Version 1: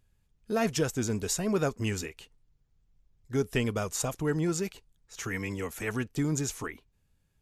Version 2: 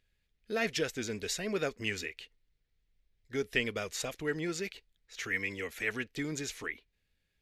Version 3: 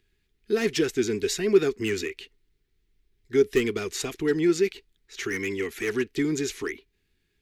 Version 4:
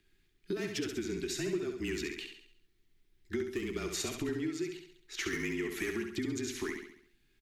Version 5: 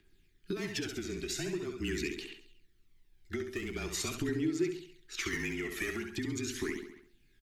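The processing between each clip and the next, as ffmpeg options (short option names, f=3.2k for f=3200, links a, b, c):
-af "equalizer=f=125:t=o:w=1:g=-6,equalizer=f=500:t=o:w=1:g=5,equalizer=f=1k:t=o:w=1:g=-6,equalizer=f=2k:t=o:w=1:g=12,equalizer=f=4k:t=o:w=1:g=9,equalizer=f=8k:t=o:w=1:g=-3,volume=-7.5dB"
-filter_complex "[0:a]acrossover=split=540|4400[a][b][c];[a]lowpass=f=390:t=q:w=4.8[d];[b]asoftclip=type=hard:threshold=-33.5dB[e];[d][e][c]amix=inputs=3:normalize=0,volume=5.5dB"
-filter_complex "[0:a]acompressor=threshold=-33dB:ratio=10,afreqshift=-31,asplit=2[a][b];[b]aecho=0:1:68|136|204|272|340|408:0.501|0.241|0.115|0.0554|0.0266|0.0128[c];[a][c]amix=inputs=2:normalize=0"
-af "aphaser=in_gain=1:out_gain=1:delay=1.7:decay=0.46:speed=0.43:type=triangular"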